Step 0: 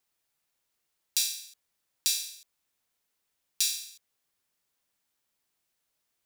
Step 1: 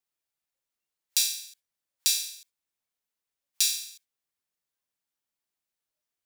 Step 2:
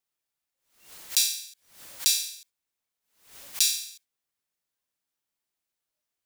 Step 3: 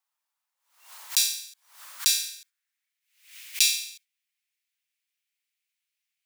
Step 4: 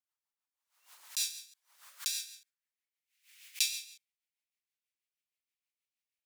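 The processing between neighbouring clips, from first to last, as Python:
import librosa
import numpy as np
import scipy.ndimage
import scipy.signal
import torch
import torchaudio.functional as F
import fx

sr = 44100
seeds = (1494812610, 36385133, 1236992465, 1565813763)

y1 = fx.noise_reduce_blind(x, sr, reduce_db=12)
y1 = y1 * 10.0 ** (3.0 / 20.0)
y2 = fx.pre_swell(y1, sr, db_per_s=110.0)
y2 = y2 * 10.0 ** (1.5 / 20.0)
y3 = fx.filter_sweep_highpass(y2, sr, from_hz=950.0, to_hz=2300.0, start_s=1.63, end_s=3.13, q=2.8)
y4 = fx.rotary(y3, sr, hz=6.3)
y4 = y4 * 10.0 ** (-8.0 / 20.0)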